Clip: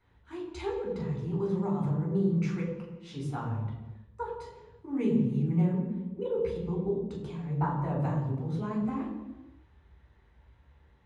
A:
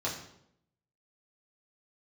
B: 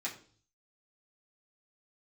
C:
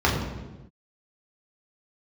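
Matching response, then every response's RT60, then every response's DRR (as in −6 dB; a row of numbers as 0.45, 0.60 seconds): C; 0.75 s, 0.45 s, non-exponential decay; −6.0, −6.5, −4.5 decibels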